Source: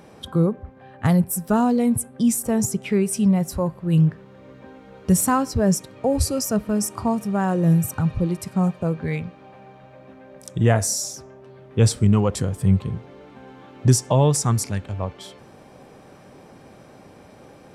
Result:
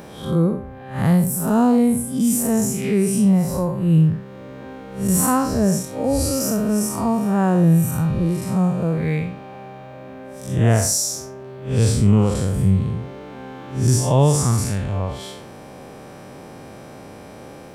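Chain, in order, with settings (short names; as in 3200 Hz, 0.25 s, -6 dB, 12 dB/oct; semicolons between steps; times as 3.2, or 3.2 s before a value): time blur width 0.153 s; in parallel at +1 dB: compressor, threshold -31 dBFS, peak gain reduction 16 dB; on the sum: high shelf 12000 Hz +8 dB; gain +2.5 dB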